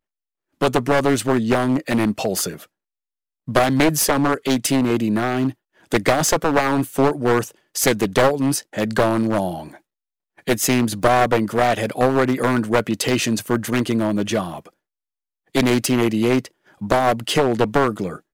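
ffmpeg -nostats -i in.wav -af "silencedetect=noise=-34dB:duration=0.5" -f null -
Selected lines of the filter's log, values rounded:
silence_start: 0.00
silence_end: 0.61 | silence_duration: 0.61
silence_start: 2.64
silence_end: 3.48 | silence_duration: 0.84
silence_start: 9.75
silence_end: 10.39 | silence_duration: 0.64
silence_start: 14.68
silence_end: 15.55 | silence_duration: 0.86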